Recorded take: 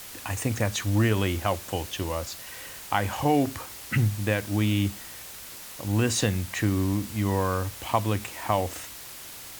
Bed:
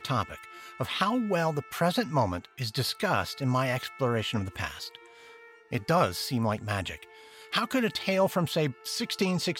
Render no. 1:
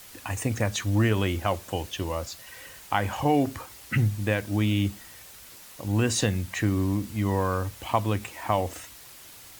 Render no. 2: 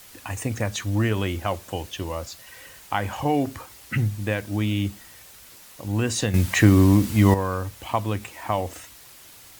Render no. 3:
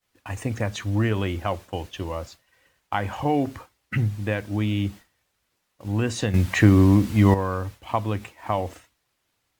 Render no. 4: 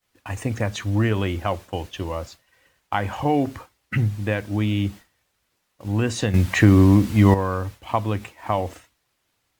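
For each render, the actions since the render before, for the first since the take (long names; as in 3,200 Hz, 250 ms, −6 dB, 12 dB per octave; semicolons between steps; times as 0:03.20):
broadband denoise 6 dB, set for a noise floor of −42 dBFS
0:06.34–0:07.34: clip gain +10 dB
downward expander −33 dBFS; high-shelf EQ 5,500 Hz −11 dB
level +2 dB; brickwall limiter −2 dBFS, peak gain reduction 1.5 dB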